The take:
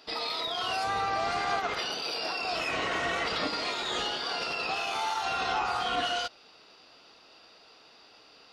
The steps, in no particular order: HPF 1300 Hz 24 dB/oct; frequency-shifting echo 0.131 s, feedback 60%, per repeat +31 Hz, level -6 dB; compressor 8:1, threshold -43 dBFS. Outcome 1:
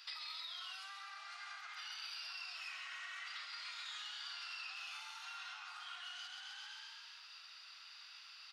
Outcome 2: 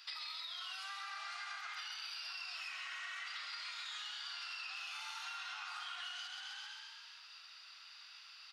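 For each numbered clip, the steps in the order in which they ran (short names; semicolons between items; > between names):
frequency-shifting echo > compressor > HPF; frequency-shifting echo > HPF > compressor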